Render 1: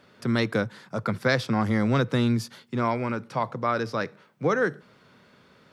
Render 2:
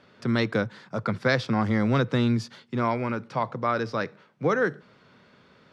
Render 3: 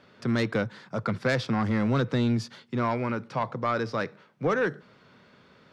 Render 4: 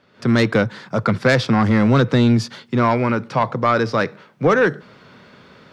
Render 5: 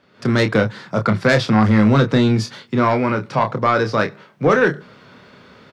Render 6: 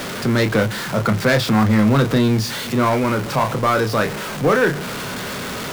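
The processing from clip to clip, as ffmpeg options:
ffmpeg -i in.wav -af "lowpass=6000" out.wav
ffmpeg -i in.wav -af "asoftclip=type=tanh:threshold=-17dB" out.wav
ffmpeg -i in.wav -af "dynaudnorm=framelen=130:gausssize=3:maxgain=12dB,volume=-1.5dB" out.wav
ffmpeg -i in.wav -filter_complex "[0:a]asplit=2[link_01][link_02];[link_02]adelay=28,volume=-7dB[link_03];[link_01][link_03]amix=inputs=2:normalize=0" out.wav
ffmpeg -i in.wav -af "aeval=exprs='val(0)+0.5*0.112*sgn(val(0))':channel_layout=same,volume=-3dB" out.wav

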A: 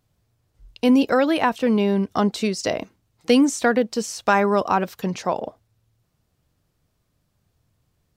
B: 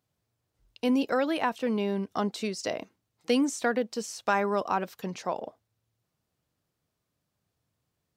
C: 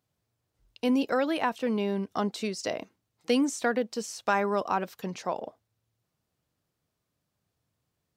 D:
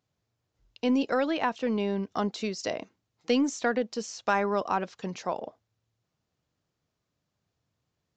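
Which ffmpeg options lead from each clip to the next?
ffmpeg -i in.wav -af "highpass=frequency=180:poles=1,volume=-7.5dB" out.wav
ffmpeg -i in.wav -af anull out.wav
ffmpeg -i in.wav -af "aeval=exprs='0.251*(cos(1*acos(clip(val(0)/0.251,-1,1)))-cos(1*PI/2))+0.00158*(cos(6*acos(clip(val(0)/0.251,-1,1)))-cos(6*PI/2))':channel_layout=same,aresample=16000,aresample=44100" out.wav

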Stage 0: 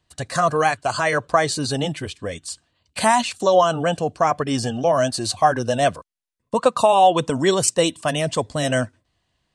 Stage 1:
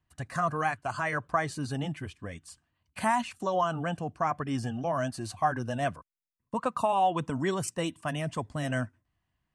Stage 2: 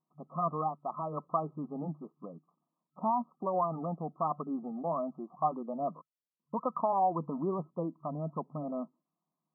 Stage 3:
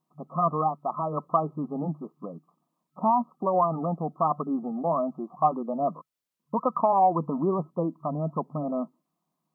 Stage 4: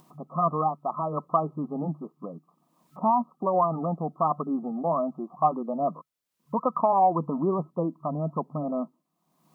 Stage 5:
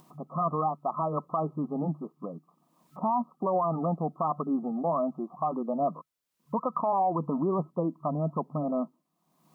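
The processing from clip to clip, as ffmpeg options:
ffmpeg -i in.wav -af "equalizer=frequency=500:width_type=o:width=1:gain=-10,equalizer=frequency=4000:width_type=o:width=1:gain=-12,equalizer=frequency=8000:width_type=o:width=1:gain=-9,volume=-6dB" out.wav
ffmpeg -i in.wav -af "afftfilt=real='re*between(b*sr/4096,140,1300)':imag='im*between(b*sr/4096,140,1300)':win_size=4096:overlap=0.75,volume=-3dB" out.wav
ffmpeg -i in.wav -af "aeval=exprs='0.141*(cos(1*acos(clip(val(0)/0.141,-1,1)))-cos(1*PI/2))+0.00126*(cos(3*acos(clip(val(0)/0.141,-1,1)))-cos(3*PI/2))':channel_layout=same,volume=7.5dB" out.wav
ffmpeg -i in.wav -af "acompressor=mode=upward:threshold=-42dB:ratio=2.5" out.wav
ffmpeg -i in.wav -af "alimiter=limit=-19dB:level=0:latency=1:release=60" out.wav

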